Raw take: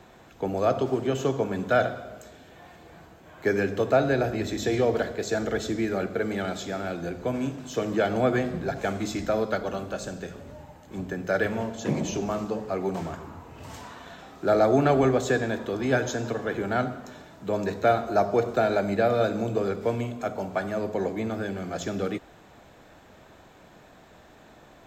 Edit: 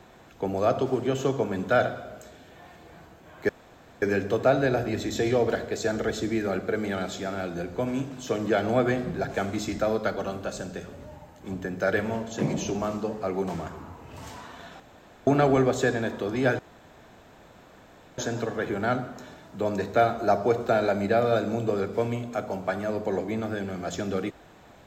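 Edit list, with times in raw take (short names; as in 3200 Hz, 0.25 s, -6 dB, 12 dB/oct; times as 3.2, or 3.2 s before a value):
3.49 insert room tone 0.53 s
14.27–14.74 room tone
16.06 insert room tone 1.59 s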